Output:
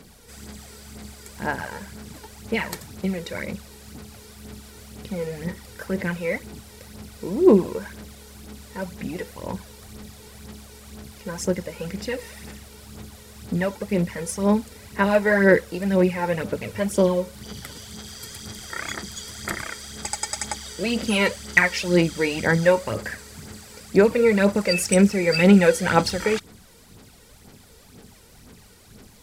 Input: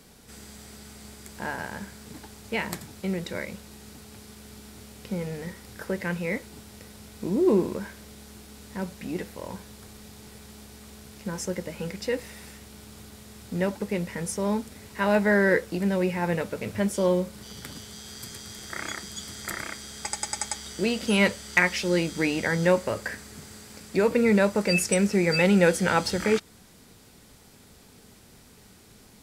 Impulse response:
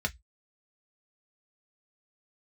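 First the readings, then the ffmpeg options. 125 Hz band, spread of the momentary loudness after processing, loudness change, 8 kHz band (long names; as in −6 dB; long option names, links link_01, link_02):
+4.0 dB, 24 LU, +3.5 dB, +2.5 dB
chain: -af "aphaser=in_gain=1:out_gain=1:delay=2.2:decay=0.56:speed=2:type=sinusoidal,volume=1dB"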